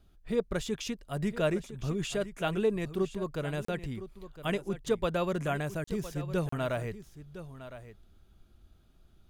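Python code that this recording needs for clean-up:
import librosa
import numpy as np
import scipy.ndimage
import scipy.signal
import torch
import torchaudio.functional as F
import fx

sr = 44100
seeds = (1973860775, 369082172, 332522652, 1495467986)

y = fx.fix_interpolate(x, sr, at_s=(3.65, 5.84, 6.49), length_ms=34.0)
y = fx.fix_echo_inverse(y, sr, delay_ms=1010, level_db=-13.5)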